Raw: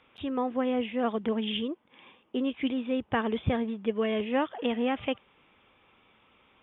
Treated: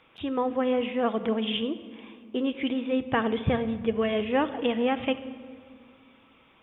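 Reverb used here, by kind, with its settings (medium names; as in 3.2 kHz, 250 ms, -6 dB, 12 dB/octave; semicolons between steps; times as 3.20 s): simulated room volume 3800 m³, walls mixed, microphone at 0.67 m; trim +2.5 dB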